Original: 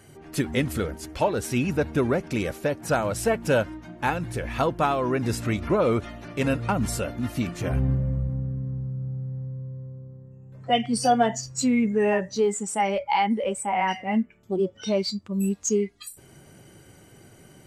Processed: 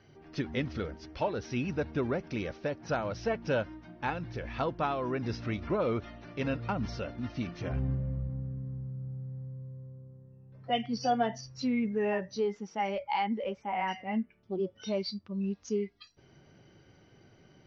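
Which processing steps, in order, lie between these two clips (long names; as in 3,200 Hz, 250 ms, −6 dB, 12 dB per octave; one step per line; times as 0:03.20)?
Butterworth low-pass 5,900 Hz 96 dB per octave
level −8 dB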